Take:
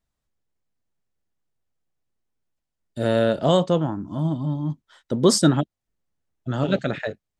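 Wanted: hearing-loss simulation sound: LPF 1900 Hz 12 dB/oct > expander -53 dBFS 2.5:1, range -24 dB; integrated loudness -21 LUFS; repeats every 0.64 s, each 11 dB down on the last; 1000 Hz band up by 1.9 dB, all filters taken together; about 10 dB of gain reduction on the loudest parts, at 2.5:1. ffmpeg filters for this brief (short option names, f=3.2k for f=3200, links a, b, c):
-af "equalizer=f=1k:t=o:g=3,acompressor=threshold=-26dB:ratio=2.5,lowpass=1.9k,aecho=1:1:640|1280|1920:0.282|0.0789|0.0221,agate=range=-24dB:threshold=-53dB:ratio=2.5,volume=9dB"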